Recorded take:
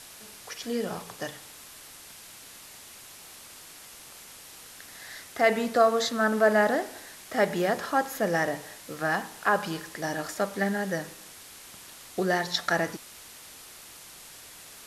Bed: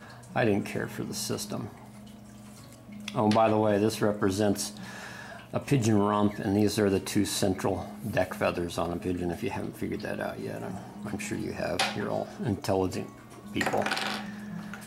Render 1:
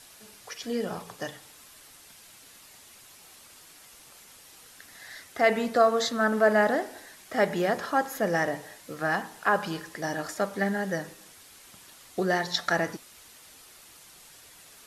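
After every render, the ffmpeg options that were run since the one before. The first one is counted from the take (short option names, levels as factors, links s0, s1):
-af "afftdn=nr=6:nf=-48"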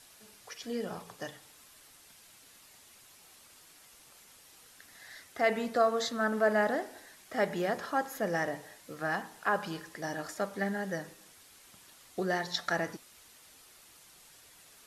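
-af "volume=0.531"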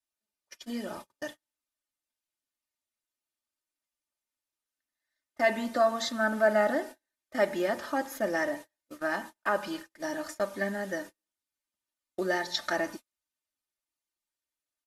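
-af "agate=range=0.0126:threshold=0.00708:ratio=16:detection=peak,aecho=1:1:3.3:0.8"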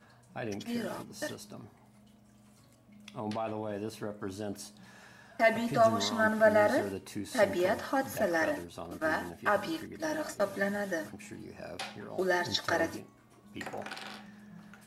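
-filter_complex "[1:a]volume=0.237[s0];[0:a][s0]amix=inputs=2:normalize=0"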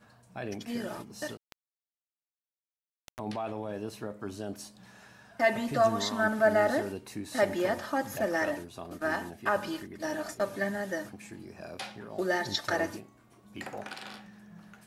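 -filter_complex "[0:a]asettb=1/sr,asplit=3[s0][s1][s2];[s0]atrim=end=1.374[s3];[s1]atrim=start=1.37:end=3.19,asetpts=PTS-STARTPTS,afade=t=in:d=0.004:c=qsin,afade=t=out:st=1.816:d=0.004:c=qsin,acrusher=bits=3:dc=4:mix=0:aa=0.000001[s4];[s2]atrim=start=3.186[s5];[s3][s4]acrossfade=d=0.004:c1=hsin:c2=qsin[s6];[s6][s5]acrossfade=d=0.004:c1=qsin:c2=hsin"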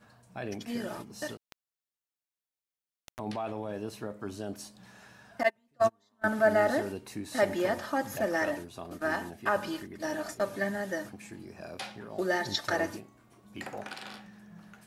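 -filter_complex "[0:a]asettb=1/sr,asplit=3[s0][s1][s2];[s0]atrim=end=5.434[s3];[s1]atrim=start=5.43:end=6.24,asetpts=PTS-STARTPTS,afade=t=in:d=0.004:c=qsin,afade=t=out:st=0.806:d=0.004:c=qsin,agate=range=0.0126:threshold=0.0708:ratio=16:release=100:detection=peak[s4];[s2]atrim=start=6.236[s5];[s3][s4]acrossfade=d=0.004:c1=hsin:c2=qsin[s6];[s6][s5]acrossfade=d=0.004:c1=qsin:c2=hsin"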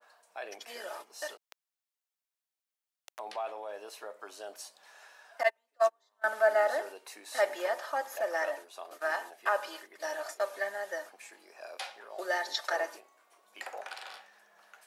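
-af "highpass=f=530:w=0.5412,highpass=f=530:w=1.3066,adynamicequalizer=threshold=0.00631:dfrequency=1500:dqfactor=0.7:tfrequency=1500:tqfactor=0.7:attack=5:release=100:ratio=0.375:range=2:mode=cutabove:tftype=highshelf"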